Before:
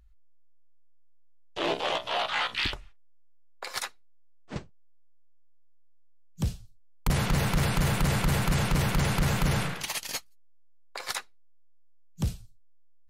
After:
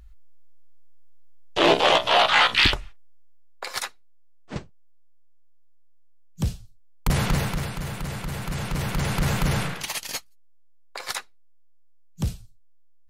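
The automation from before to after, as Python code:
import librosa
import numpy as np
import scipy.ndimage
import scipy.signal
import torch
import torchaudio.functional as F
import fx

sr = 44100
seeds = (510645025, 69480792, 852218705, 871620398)

y = fx.gain(x, sr, db=fx.line((2.71, 11.0), (3.78, 3.5), (7.31, 3.5), (7.74, -6.0), (8.32, -6.0), (9.28, 2.5)))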